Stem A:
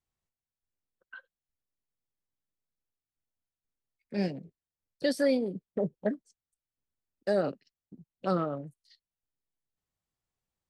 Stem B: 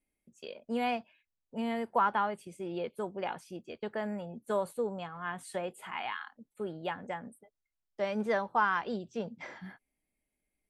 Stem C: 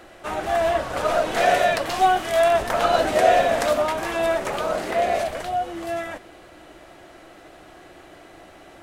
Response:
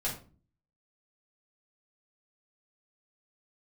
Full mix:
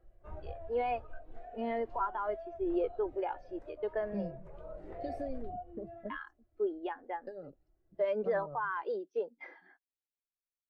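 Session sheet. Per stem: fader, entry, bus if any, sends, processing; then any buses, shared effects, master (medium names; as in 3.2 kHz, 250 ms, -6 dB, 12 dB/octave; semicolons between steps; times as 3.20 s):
-1.0 dB, 0.00 s, bus A, no send, compression 12:1, threshold -32 dBFS, peak gain reduction 11.5 dB
-3.0 dB, 0.00 s, muted 4.36–6.10 s, bus A, no send, Chebyshev band-pass 300–5200 Hz, order 3; level rider gain up to 9 dB
-5.5 dB, 0.00 s, no bus, no send, tilt EQ -2 dB/octave; compression 5:1, threshold -22 dBFS, peak gain reduction 11 dB; flange 1.3 Hz, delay 5.8 ms, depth 7 ms, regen -64%; auto duck -8 dB, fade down 0.95 s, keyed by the second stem
bus A: 0.0 dB, peak limiter -21 dBFS, peak gain reduction 11 dB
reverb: none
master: bass shelf 110 Hz +10.5 dB; flange 0.24 Hz, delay 1.7 ms, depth 1.4 ms, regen -58%; spectral contrast expander 1.5:1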